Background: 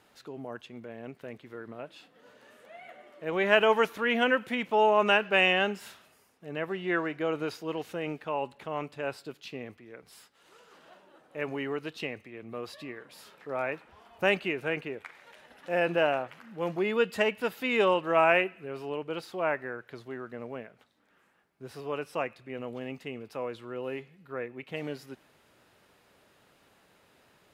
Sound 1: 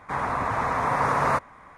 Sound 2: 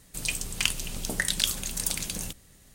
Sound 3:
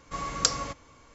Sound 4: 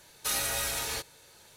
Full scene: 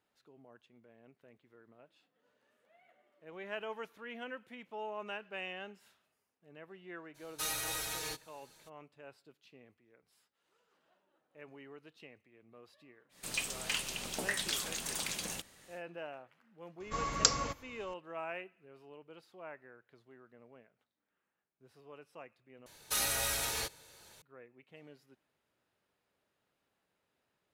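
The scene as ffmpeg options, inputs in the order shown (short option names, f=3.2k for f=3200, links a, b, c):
-filter_complex "[4:a]asplit=2[a][b];[0:a]volume=-19dB[c];[a]aecho=1:1:6.4:0.7[d];[2:a]asplit=2[e][f];[f]highpass=f=720:p=1,volume=25dB,asoftclip=type=tanh:threshold=-4dB[g];[e][g]amix=inputs=2:normalize=0,lowpass=f=3.2k:p=1,volume=-6dB[h];[c]asplit=2[i][j];[i]atrim=end=22.664[k];[b]atrim=end=1.56,asetpts=PTS-STARTPTS,volume=-2.5dB[l];[j]atrim=start=24.216[m];[d]atrim=end=1.56,asetpts=PTS-STARTPTS,volume=-8.5dB,afade=t=in:d=0.02,afade=t=out:st=1.54:d=0.02,adelay=314874S[n];[h]atrim=end=2.74,asetpts=PTS-STARTPTS,volume=-15.5dB,afade=t=in:d=0.1,afade=t=out:st=2.64:d=0.1,adelay=13090[o];[3:a]atrim=end=1.14,asetpts=PTS-STARTPTS,volume=-2.5dB,afade=t=in:d=0.004:c=hsin,afade=t=out:st=1.136:d=0.004:c=hsin,adelay=16800[p];[k][l]acrossfade=d=0.004:c1=hsin:c2=hsin[q];[q][m]acrossfade=d=0.004:c1=hsin:c2=hsin[r];[r][n][o][p]amix=inputs=4:normalize=0"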